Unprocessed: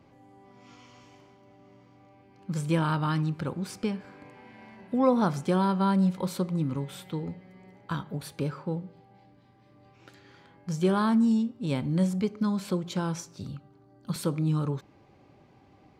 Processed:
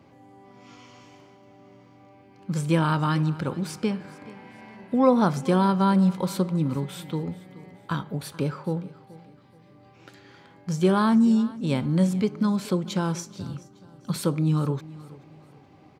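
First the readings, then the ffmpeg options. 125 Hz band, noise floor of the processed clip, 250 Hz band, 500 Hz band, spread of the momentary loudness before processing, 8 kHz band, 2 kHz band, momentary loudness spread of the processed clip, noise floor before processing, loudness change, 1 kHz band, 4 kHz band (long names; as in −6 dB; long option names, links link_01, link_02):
+4.0 dB, −54 dBFS, +4.0 dB, +4.0 dB, 15 LU, +4.0 dB, +4.0 dB, 20 LU, −59 dBFS, +4.0 dB, +4.0 dB, +4.0 dB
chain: -af "highpass=80,aecho=1:1:428|856|1284:0.106|0.0371|0.013,volume=4dB"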